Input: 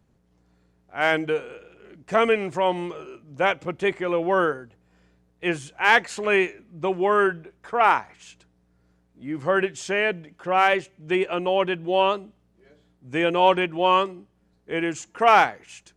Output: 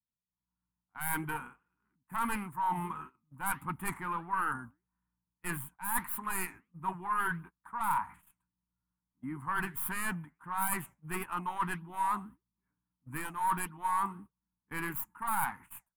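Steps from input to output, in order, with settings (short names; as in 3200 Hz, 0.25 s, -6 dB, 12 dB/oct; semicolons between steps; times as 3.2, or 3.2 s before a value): tracing distortion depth 0.38 ms; EQ curve 260 Hz 0 dB, 410 Hz -22 dB, 610 Hz -27 dB, 940 Hz +9 dB, 5800 Hz -29 dB, 10000 Hz +12 dB; gate -44 dBFS, range -24 dB; reverse; compressor 4:1, threshold -31 dBFS, peak gain reduction 18 dB; reverse; flange 1.6 Hz, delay 1 ms, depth 9.4 ms, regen -79%; dynamic EQ 5000 Hz, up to +4 dB, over -54 dBFS, Q 0.71; AGC gain up to 12 dB; gain -8.5 dB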